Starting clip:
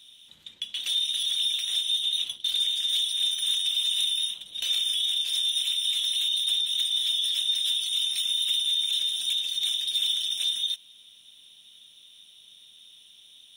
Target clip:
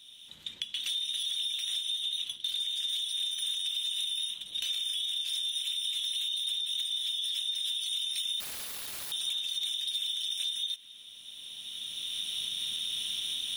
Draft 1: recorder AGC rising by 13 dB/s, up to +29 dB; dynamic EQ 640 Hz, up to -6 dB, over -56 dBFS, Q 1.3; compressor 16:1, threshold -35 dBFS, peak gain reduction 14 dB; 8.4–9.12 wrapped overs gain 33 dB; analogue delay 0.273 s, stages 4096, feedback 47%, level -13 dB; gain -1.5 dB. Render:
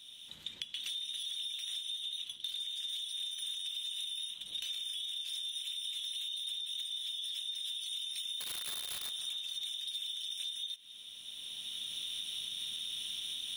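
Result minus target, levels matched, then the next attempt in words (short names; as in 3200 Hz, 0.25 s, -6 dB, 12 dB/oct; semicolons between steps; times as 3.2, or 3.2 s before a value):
compressor: peak gain reduction +6.5 dB
recorder AGC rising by 13 dB/s, up to +29 dB; dynamic EQ 640 Hz, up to -6 dB, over -56 dBFS, Q 1.3; compressor 16:1, threshold -28 dBFS, peak gain reduction 7.5 dB; 8.4–9.12 wrapped overs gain 33 dB; analogue delay 0.273 s, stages 4096, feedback 47%, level -13 dB; gain -1.5 dB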